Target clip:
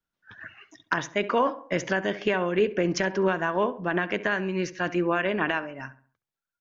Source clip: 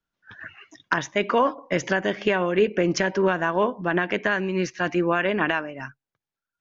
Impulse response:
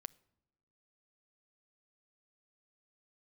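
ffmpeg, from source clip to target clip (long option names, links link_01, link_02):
-filter_complex "[0:a]asplit=2[link_01][link_02];[link_02]adelay=68,lowpass=frequency=1900:poles=1,volume=-15dB,asplit=2[link_03][link_04];[link_04]adelay=68,lowpass=frequency=1900:poles=1,volume=0.42,asplit=2[link_05][link_06];[link_06]adelay=68,lowpass=frequency=1900:poles=1,volume=0.42,asplit=2[link_07][link_08];[link_08]adelay=68,lowpass=frequency=1900:poles=1,volume=0.42[link_09];[link_01][link_03][link_05][link_07][link_09]amix=inputs=5:normalize=0,volume=-3dB"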